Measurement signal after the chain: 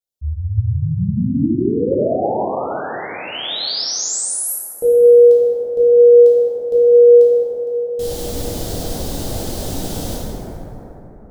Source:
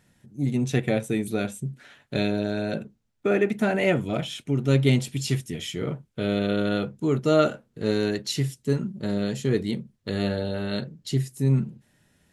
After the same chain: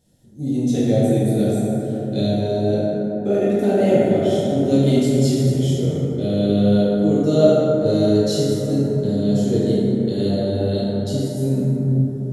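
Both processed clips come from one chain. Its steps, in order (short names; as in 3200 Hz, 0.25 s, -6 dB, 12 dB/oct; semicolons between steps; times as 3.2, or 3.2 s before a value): band shelf 1600 Hz -14.5 dB; plate-style reverb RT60 4.1 s, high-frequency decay 0.3×, DRR -9.5 dB; gain -2.5 dB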